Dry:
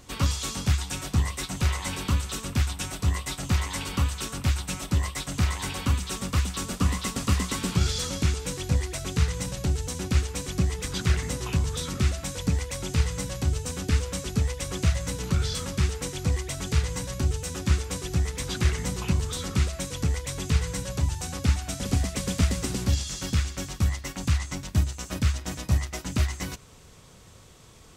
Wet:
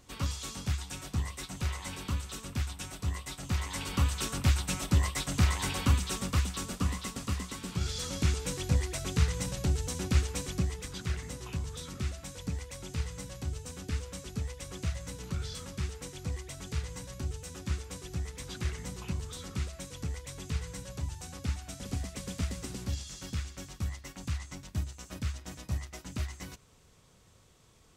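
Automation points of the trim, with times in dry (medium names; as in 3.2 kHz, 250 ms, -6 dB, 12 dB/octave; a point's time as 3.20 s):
3.40 s -8.5 dB
4.19 s -1 dB
5.95 s -1 dB
7.62 s -11.5 dB
8.31 s -3 dB
10.38 s -3 dB
10.98 s -10.5 dB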